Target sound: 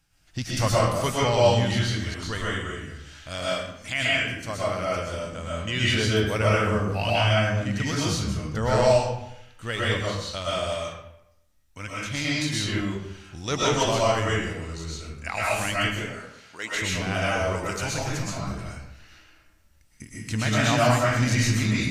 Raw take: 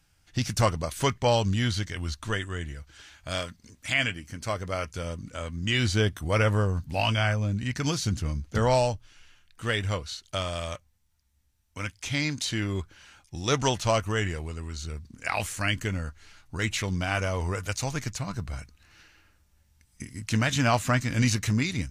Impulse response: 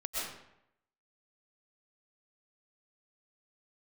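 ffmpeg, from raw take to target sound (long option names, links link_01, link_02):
-filter_complex "[0:a]asettb=1/sr,asplit=3[link_01][link_02][link_03];[link_01]atrim=end=15.864[link_04];[link_02]atrim=start=15.86:end=16.74,asetpts=PTS-STARTPTS,afade=type=in:duration=0.004:curve=qsin,afade=type=out:start_time=0.876:duration=0.004:curve=qsin,highpass=410[link_05];[link_03]atrim=start=16.736[link_06];[link_04][link_05]acrossfade=duration=0.004:curve1=hsin:curve2=qsin[link_07];[link_07][link_06]acrossfade=duration=0.004:curve1=qsin:curve2=hsin[link_08];[1:a]atrim=start_sample=2205[link_09];[link_08][link_09]afir=irnorm=-1:irlink=0"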